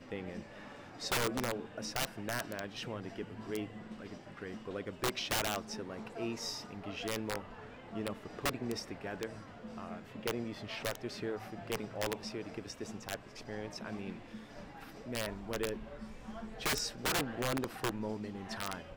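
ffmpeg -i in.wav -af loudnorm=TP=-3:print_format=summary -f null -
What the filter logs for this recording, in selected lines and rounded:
Input Integrated:    -38.7 LUFS
Input True Peak:     -21.9 dBTP
Input LRA:             4.6 LU
Input Threshold:     -48.9 LUFS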